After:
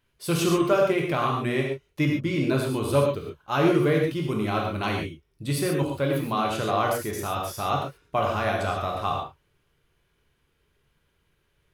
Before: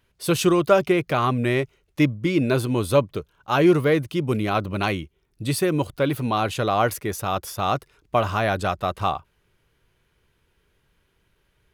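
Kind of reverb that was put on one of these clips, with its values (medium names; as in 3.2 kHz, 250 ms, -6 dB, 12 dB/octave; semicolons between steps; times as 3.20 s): gated-style reverb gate 160 ms flat, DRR -0.5 dB; trim -6 dB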